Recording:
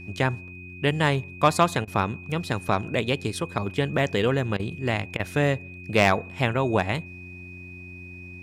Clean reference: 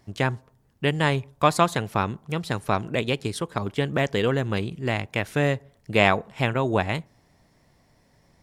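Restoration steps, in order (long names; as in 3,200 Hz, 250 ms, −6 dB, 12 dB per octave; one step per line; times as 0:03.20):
clipped peaks rebuilt −8.5 dBFS
hum removal 90.1 Hz, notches 4
notch filter 2,500 Hz, Q 30
repair the gap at 0:01.85/0:04.57/0:05.17, 24 ms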